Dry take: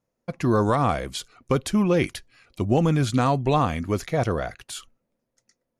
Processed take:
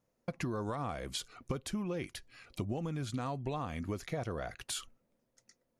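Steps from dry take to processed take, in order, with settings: compressor 10:1, threshold -34 dBFS, peak gain reduction 18.5 dB

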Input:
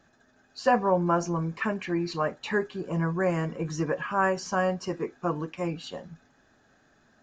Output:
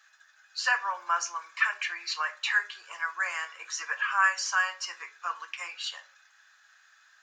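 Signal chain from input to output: HPF 1300 Hz 24 dB/oct; reverb RT60 0.45 s, pre-delay 6 ms, DRR 8.5 dB; gain +7 dB

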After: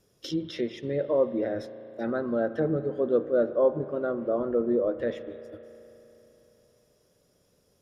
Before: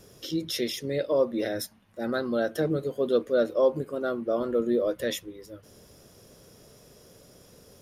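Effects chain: treble ducked by the level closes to 1300 Hz, closed at -25 dBFS; gate -41 dBFS, range -14 dB; spring tank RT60 3.5 s, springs 35 ms, chirp 50 ms, DRR 12.5 dB

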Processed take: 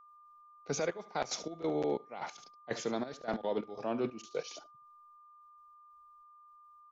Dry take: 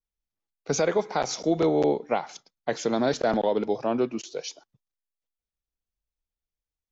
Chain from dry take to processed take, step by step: reverse; compressor 5:1, threshold -31 dBFS, peak gain reduction 12 dB; reverse; echo 73 ms -14.5 dB; step gate ".x.xx..xxxx.." 183 bpm -12 dB; dynamic EQ 2200 Hz, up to +3 dB, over -54 dBFS, Q 0.98; whine 1200 Hz -56 dBFS

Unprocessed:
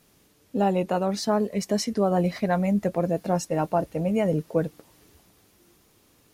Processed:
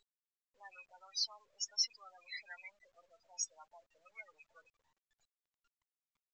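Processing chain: rattling part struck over -37 dBFS, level -33 dBFS; soft clip -20.5 dBFS, distortion -12 dB; loudest bins only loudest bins 16; Bessel high-pass 2900 Hz, order 4; gain +4 dB; µ-law 128 kbps 16000 Hz

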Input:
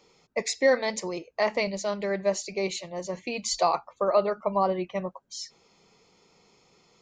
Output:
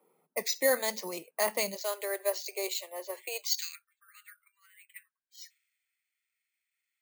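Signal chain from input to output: steep high-pass 150 Hz 72 dB/oct, from 1.74 s 360 Hz, from 3.55 s 1600 Hz; low-pass opened by the level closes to 880 Hz, open at -26.5 dBFS; dynamic EQ 2300 Hz, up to -5 dB, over -45 dBFS, Q 2.9; careless resampling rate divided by 4×, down filtered, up hold; tilt +2.5 dB/oct; gain -3.5 dB

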